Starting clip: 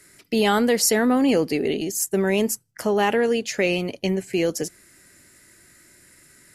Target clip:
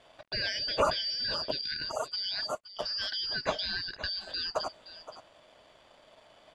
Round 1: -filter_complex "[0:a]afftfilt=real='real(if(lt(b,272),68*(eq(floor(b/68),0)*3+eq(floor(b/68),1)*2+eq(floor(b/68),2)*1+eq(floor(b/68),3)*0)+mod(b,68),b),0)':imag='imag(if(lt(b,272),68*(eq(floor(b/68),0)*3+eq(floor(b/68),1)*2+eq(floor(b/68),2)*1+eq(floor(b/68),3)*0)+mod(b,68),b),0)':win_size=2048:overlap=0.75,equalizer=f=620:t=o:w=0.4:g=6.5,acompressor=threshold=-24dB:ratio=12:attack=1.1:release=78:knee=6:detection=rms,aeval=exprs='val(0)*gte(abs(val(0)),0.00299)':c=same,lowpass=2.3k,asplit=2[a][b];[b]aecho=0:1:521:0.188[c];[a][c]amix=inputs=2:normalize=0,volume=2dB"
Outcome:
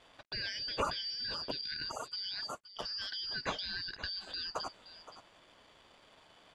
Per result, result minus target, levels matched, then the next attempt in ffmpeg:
compressor: peak gain reduction +6 dB; 500 Hz band -4.0 dB
-filter_complex "[0:a]afftfilt=real='real(if(lt(b,272),68*(eq(floor(b/68),0)*3+eq(floor(b/68),1)*2+eq(floor(b/68),2)*1+eq(floor(b/68),3)*0)+mod(b,68),b),0)':imag='imag(if(lt(b,272),68*(eq(floor(b/68),0)*3+eq(floor(b/68),1)*2+eq(floor(b/68),2)*1+eq(floor(b/68),3)*0)+mod(b,68),b),0)':win_size=2048:overlap=0.75,equalizer=f=620:t=o:w=0.4:g=6.5,acompressor=threshold=-17dB:ratio=12:attack=1.1:release=78:knee=6:detection=rms,aeval=exprs='val(0)*gte(abs(val(0)),0.00299)':c=same,lowpass=2.3k,asplit=2[a][b];[b]aecho=0:1:521:0.188[c];[a][c]amix=inputs=2:normalize=0,volume=2dB"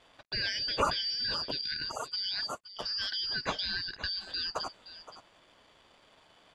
500 Hz band -5.5 dB
-filter_complex "[0:a]afftfilt=real='real(if(lt(b,272),68*(eq(floor(b/68),0)*3+eq(floor(b/68),1)*2+eq(floor(b/68),2)*1+eq(floor(b/68),3)*0)+mod(b,68),b),0)':imag='imag(if(lt(b,272),68*(eq(floor(b/68),0)*3+eq(floor(b/68),1)*2+eq(floor(b/68),2)*1+eq(floor(b/68),3)*0)+mod(b,68),b),0)':win_size=2048:overlap=0.75,equalizer=f=620:t=o:w=0.4:g=17,acompressor=threshold=-17dB:ratio=12:attack=1.1:release=78:knee=6:detection=rms,aeval=exprs='val(0)*gte(abs(val(0)),0.00299)':c=same,lowpass=2.3k,asplit=2[a][b];[b]aecho=0:1:521:0.188[c];[a][c]amix=inputs=2:normalize=0,volume=2dB"

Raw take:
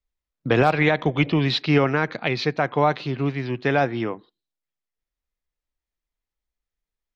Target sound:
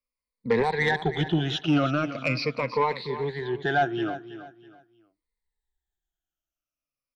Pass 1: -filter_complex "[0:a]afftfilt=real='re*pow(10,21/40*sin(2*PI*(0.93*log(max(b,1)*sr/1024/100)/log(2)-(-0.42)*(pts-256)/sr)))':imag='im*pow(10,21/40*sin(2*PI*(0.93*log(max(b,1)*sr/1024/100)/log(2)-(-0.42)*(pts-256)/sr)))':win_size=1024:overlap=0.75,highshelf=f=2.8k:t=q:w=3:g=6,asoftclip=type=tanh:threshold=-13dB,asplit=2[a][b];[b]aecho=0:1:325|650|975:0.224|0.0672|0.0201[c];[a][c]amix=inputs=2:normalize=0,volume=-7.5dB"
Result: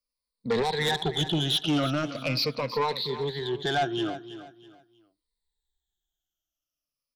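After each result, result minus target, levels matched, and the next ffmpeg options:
4000 Hz band +8.0 dB; soft clip: distortion +7 dB
-filter_complex "[0:a]afftfilt=real='re*pow(10,21/40*sin(2*PI*(0.93*log(max(b,1)*sr/1024/100)/log(2)-(-0.42)*(pts-256)/sr)))':imag='im*pow(10,21/40*sin(2*PI*(0.93*log(max(b,1)*sr/1024/100)/log(2)-(-0.42)*(pts-256)/sr)))':win_size=1024:overlap=0.75,asoftclip=type=tanh:threshold=-13dB,asplit=2[a][b];[b]aecho=0:1:325|650|975:0.224|0.0672|0.0201[c];[a][c]amix=inputs=2:normalize=0,volume=-7.5dB"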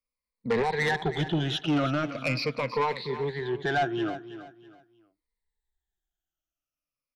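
soft clip: distortion +7 dB
-filter_complex "[0:a]afftfilt=real='re*pow(10,21/40*sin(2*PI*(0.93*log(max(b,1)*sr/1024/100)/log(2)-(-0.42)*(pts-256)/sr)))':imag='im*pow(10,21/40*sin(2*PI*(0.93*log(max(b,1)*sr/1024/100)/log(2)-(-0.42)*(pts-256)/sr)))':win_size=1024:overlap=0.75,asoftclip=type=tanh:threshold=-6.5dB,asplit=2[a][b];[b]aecho=0:1:325|650|975:0.224|0.0672|0.0201[c];[a][c]amix=inputs=2:normalize=0,volume=-7.5dB"

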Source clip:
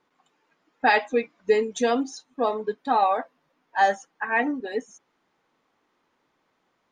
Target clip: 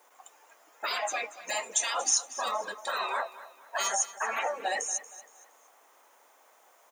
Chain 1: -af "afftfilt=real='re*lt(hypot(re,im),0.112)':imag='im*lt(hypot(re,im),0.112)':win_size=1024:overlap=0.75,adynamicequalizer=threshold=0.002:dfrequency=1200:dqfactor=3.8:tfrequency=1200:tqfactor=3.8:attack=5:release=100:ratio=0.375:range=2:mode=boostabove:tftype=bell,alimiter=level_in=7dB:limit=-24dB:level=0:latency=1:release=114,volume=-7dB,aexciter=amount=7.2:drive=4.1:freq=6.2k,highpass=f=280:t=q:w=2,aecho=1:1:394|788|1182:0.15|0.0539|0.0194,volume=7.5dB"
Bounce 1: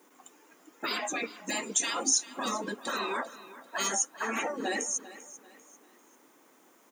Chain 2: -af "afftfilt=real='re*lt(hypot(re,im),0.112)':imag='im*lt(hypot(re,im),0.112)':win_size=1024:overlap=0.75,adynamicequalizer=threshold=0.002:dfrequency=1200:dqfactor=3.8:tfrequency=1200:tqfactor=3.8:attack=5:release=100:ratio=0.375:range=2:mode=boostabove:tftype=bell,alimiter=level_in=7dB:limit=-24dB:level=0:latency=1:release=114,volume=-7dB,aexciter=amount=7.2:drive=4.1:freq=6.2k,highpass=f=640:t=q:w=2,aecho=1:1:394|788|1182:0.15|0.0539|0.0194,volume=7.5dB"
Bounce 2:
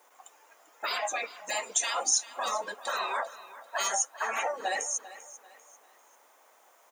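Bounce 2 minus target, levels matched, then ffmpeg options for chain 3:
echo 0.16 s late
-af "afftfilt=real='re*lt(hypot(re,im),0.112)':imag='im*lt(hypot(re,im),0.112)':win_size=1024:overlap=0.75,adynamicequalizer=threshold=0.002:dfrequency=1200:dqfactor=3.8:tfrequency=1200:tqfactor=3.8:attack=5:release=100:ratio=0.375:range=2:mode=boostabove:tftype=bell,alimiter=level_in=7dB:limit=-24dB:level=0:latency=1:release=114,volume=-7dB,aexciter=amount=7.2:drive=4.1:freq=6.2k,highpass=f=640:t=q:w=2,aecho=1:1:234|468|702:0.15|0.0539|0.0194,volume=7.5dB"

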